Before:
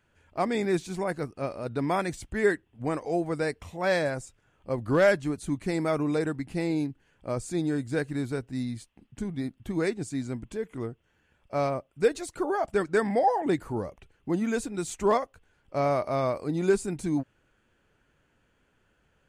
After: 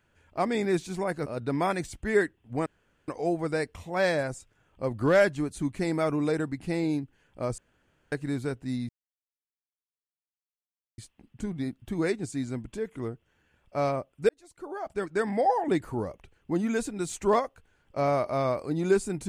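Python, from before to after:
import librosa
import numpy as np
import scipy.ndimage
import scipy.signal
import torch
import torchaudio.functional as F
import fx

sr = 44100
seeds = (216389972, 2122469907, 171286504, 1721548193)

y = fx.edit(x, sr, fx.cut(start_s=1.26, length_s=0.29),
    fx.insert_room_tone(at_s=2.95, length_s=0.42),
    fx.room_tone_fill(start_s=7.45, length_s=0.54),
    fx.insert_silence(at_s=8.76, length_s=2.09),
    fx.fade_in_span(start_s=12.07, length_s=1.29), tone=tone)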